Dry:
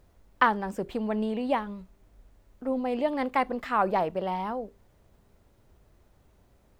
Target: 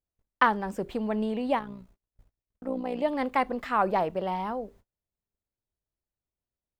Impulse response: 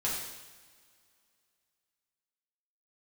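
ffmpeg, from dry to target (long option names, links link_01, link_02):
-filter_complex "[0:a]agate=range=-33dB:threshold=-52dB:ratio=16:detection=peak,asettb=1/sr,asplit=3[link_01][link_02][link_03];[link_01]atrim=end=1.594[link_04];[link_02]atrim=start=1.59:end=3.02,asetpts=PTS-STARTPTS,afade=type=in:duration=0.004:curve=qsin,afade=type=out:start_time=1.426:duration=0.004:curve=qsin,tremolo=f=60:d=0.71[link_05];[link_03]atrim=start=3.016[link_06];[link_04][link_05]acrossfade=duration=0.004:curve1=hsin:curve2=qsin[link_07];[link_07][link_06]acrossfade=duration=0.004:curve1=qsin:curve2=hsin"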